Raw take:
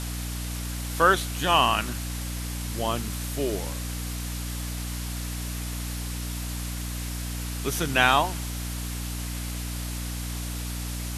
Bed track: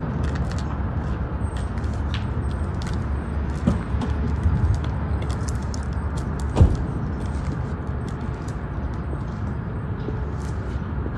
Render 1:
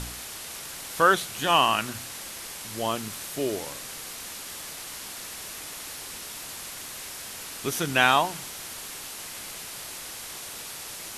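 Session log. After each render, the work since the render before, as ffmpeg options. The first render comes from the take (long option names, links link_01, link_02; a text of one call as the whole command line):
ffmpeg -i in.wav -af "bandreject=frequency=60:width_type=h:width=4,bandreject=frequency=120:width_type=h:width=4,bandreject=frequency=180:width_type=h:width=4,bandreject=frequency=240:width_type=h:width=4,bandreject=frequency=300:width_type=h:width=4" out.wav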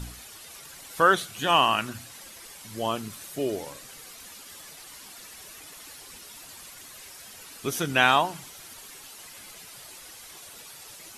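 ffmpeg -i in.wav -af "afftdn=noise_reduction=10:noise_floor=-39" out.wav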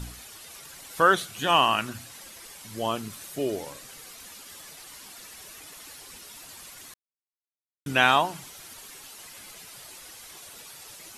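ffmpeg -i in.wav -filter_complex "[0:a]asplit=3[link_01][link_02][link_03];[link_01]atrim=end=6.94,asetpts=PTS-STARTPTS,afade=type=out:start_time=6.936:duration=0.004:curve=hsin[link_04];[link_02]atrim=start=6.94:end=7.86,asetpts=PTS-STARTPTS,volume=0[link_05];[link_03]atrim=start=7.86,asetpts=PTS-STARTPTS,afade=type=in:duration=0.004:curve=hsin[link_06];[link_04][link_05][link_06]concat=n=3:v=0:a=1" out.wav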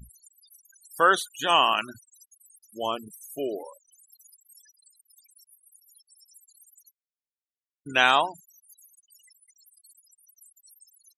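ffmpeg -i in.wav -af "bass=frequency=250:gain=-10,treble=frequency=4000:gain=5,afftfilt=real='re*gte(hypot(re,im),0.0251)':imag='im*gte(hypot(re,im),0.0251)':win_size=1024:overlap=0.75" out.wav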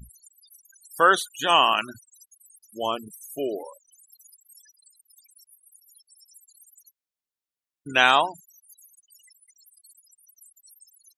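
ffmpeg -i in.wav -af "volume=2dB" out.wav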